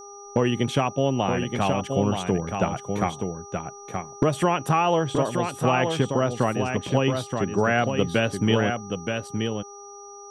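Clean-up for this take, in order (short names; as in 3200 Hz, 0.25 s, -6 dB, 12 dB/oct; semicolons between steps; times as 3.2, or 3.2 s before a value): de-hum 404.1 Hz, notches 3; notch 5800 Hz, Q 30; inverse comb 0.925 s -5.5 dB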